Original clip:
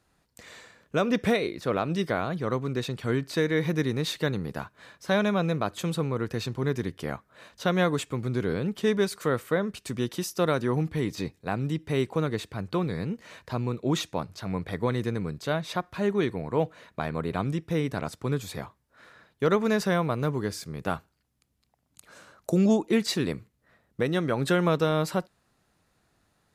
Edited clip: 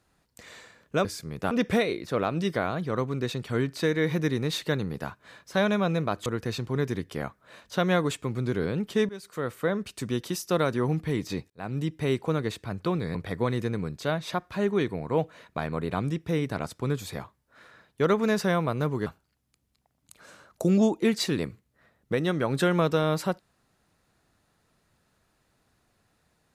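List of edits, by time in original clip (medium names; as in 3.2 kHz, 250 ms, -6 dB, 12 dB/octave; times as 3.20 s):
5.80–6.14 s: delete
8.97–9.63 s: fade in, from -20 dB
11.38–11.68 s: fade in
13.03–14.57 s: delete
20.48–20.94 s: move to 1.05 s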